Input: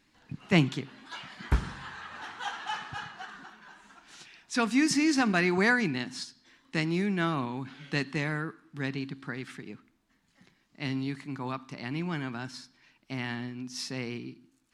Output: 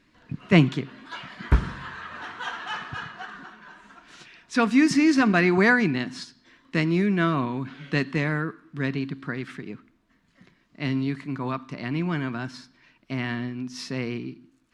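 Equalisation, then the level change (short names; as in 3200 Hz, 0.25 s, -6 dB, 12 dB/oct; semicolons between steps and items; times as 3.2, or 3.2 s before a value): Butterworth band-stop 820 Hz, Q 6.7; high shelf 4400 Hz -12 dB; +6.5 dB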